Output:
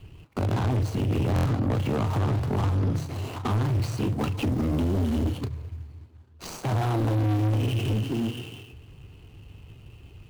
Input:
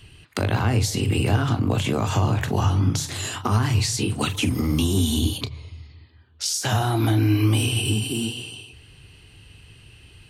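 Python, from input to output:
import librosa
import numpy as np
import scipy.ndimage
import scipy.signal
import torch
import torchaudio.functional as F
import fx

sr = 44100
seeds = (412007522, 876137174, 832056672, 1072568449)

y = scipy.ndimage.median_filter(x, 25, mode='constant')
y = 10.0 ** (-23.5 / 20.0) * np.tanh(y / 10.0 ** (-23.5 / 20.0))
y = fx.buffer_glitch(y, sr, at_s=(1.34,), block=1024, repeats=4)
y = y * librosa.db_to_amplitude(2.5)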